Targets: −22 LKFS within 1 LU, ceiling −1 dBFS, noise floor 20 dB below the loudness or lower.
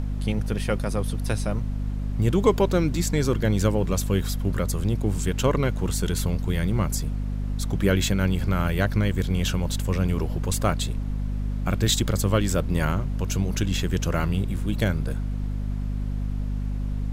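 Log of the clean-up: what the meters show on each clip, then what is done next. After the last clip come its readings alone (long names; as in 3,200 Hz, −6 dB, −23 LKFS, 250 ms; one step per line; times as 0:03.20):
mains hum 50 Hz; hum harmonics up to 250 Hz; level of the hum −25 dBFS; background noise floor −28 dBFS; target noise floor −46 dBFS; integrated loudness −25.5 LKFS; sample peak −6.0 dBFS; target loudness −22.0 LKFS
→ hum removal 50 Hz, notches 5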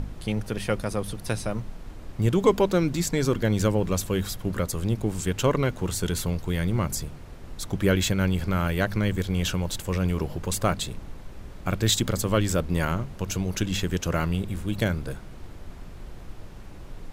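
mains hum none found; background noise floor −42 dBFS; target noise floor −47 dBFS
→ noise reduction from a noise print 6 dB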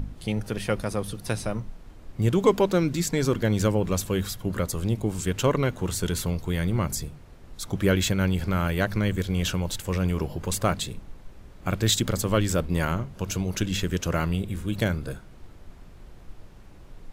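background noise floor −47 dBFS; integrated loudness −26.5 LKFS; sample peak −7.5 dBFS; target loudness −22.0 LKFS
→ level +4.5 dB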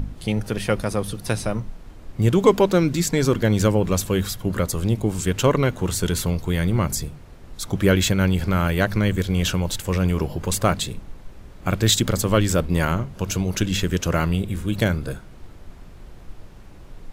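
integrated loudness −22.0 LKFS; sample peak −3.0 dBFS; background noise floor −43 dBFS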